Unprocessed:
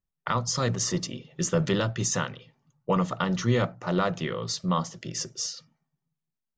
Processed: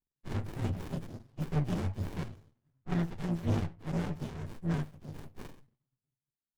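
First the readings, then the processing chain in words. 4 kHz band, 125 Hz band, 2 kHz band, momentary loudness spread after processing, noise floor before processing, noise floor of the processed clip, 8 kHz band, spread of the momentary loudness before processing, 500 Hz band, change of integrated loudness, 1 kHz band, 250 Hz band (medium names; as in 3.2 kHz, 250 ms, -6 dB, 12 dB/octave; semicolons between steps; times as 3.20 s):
-19.0 dB, -4.0 dB, -13.0 dB, 15 LU, under -85 dBFS, under -85 dBFS, under -25 dB, 9 LU, -13.0 dB, -7.5 dB, -14.5 dB, -6.5 dB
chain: frequency axis rescaled in octaves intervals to 124%; sliding maximum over 65 samples; trim -2.5 dB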